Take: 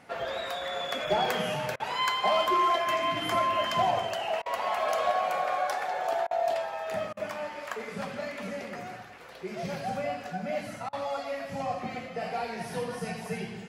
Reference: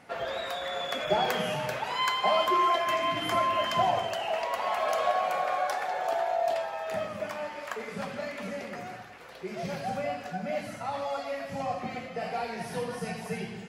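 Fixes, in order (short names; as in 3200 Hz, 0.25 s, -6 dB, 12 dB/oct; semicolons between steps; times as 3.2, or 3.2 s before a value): clip repair -18 dBFS; interpolate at 1.76/4.42/6.27/7.13/10.89, 38 ms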